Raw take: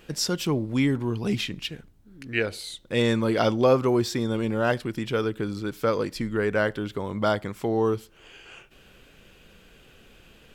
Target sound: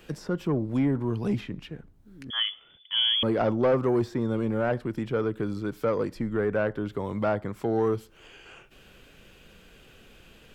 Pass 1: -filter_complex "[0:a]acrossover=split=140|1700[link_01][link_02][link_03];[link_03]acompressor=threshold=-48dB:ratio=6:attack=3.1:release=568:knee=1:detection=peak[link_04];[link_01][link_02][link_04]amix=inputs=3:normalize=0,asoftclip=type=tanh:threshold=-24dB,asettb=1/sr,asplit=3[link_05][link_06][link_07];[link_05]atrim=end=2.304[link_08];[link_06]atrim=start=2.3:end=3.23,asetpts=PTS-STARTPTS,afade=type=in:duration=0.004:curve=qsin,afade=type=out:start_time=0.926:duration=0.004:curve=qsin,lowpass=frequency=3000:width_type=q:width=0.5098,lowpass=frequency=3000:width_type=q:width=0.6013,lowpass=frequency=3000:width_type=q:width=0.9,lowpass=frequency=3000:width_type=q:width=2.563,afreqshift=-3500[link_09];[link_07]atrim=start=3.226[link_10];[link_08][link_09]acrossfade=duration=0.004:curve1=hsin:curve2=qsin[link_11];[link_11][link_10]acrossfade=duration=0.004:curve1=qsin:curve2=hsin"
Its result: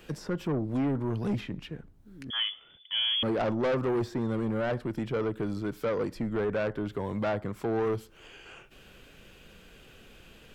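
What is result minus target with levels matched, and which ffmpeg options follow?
soft clipping: distortion +8 dB
-filter_complex "[0:a]acrossover=split=140|1700[link_01][link_02][link_03];[link_03]acompressor=threshold=-48dB:ratio=6:attack=3.1:release=568:knee=1:detection=peak[link_04];[link_01][link_02][link_04]amix=inputs=3:normalize=0,asoftclip=type=tanh:threshold=-16dB,asettb=1/sr,asplit=3[link_05][link_06][link_07];[link_05]atrim=end=2.304[link_08];[link_06]atrim=start=2.3:end=3.23,asetpts=PTS-STARTPTS,afade=type=in:duration=0.004:curve=qsin,afade=type=out:start_time=0.926:duration=0.004:curve=qsin,lowpass=frequency=3000:width_type=q:width=0.5098,lowpass=frequency=3000:width_type=q:width=0.6013,lowpass=frequency=3000:width_type=q:width=0.9,lowpass=frequency=3000:width_type=q:width=2.563,afreqshift=-3500[link_09];[link_07]atrim=start=3.226[link_10];[link_08][link_09]acrossfade=duration=0.004:curve1=hsin:curve2=qsin[link_11];[link_11][link_10]acrossfade=duration=0.004:curve1=qsin:curve2=hsin"

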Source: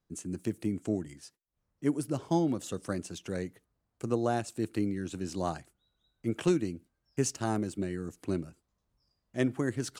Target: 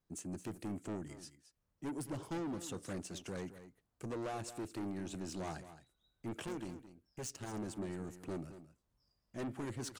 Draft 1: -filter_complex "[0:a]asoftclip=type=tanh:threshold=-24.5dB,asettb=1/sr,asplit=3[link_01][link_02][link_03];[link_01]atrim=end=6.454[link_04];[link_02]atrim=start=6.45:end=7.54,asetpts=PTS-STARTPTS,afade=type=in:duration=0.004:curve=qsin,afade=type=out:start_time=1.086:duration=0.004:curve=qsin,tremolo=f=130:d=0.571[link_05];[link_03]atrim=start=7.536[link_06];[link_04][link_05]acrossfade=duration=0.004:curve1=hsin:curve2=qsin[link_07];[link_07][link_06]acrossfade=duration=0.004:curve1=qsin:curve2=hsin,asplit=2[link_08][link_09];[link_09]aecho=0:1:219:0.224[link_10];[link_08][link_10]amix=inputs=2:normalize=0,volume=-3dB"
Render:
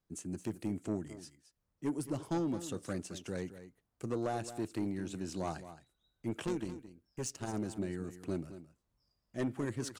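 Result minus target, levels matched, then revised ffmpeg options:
soft clipping: distortion −7 dB
-filter_complex "[0:a]asoftclip=type=tanh:threshold=-34dB,asettb=1/sr,asplit=3[link_01][link_02][link_03];[link_01]atrim=end=6.454[link_04];[link_02]atrim=start=6.45:end=7.54,asetpts=PTS-STARTPTS,afade=type=in:duration=0.004:curve=qsin,afade=type=out:start_time=1.086:duration=0.004:curve=qsin,tremolo=f=130:d=0.571[link_05];[link_03]atrim=start=7.536[link_06];[link_04][link_05]acrossfade=duration=0.004:curve1=hsin:curve2=qsin[link_07];[link_07][link_06]acrossfade=duration=0.004:curve1=qsin:curve2=hsin,asplit=2[link_08][link_09];[link_09]aecho=0:1:219:0.224[link_10];[link_08][link_10]amix=inputs=2:normalize=0,volume=-3dB"

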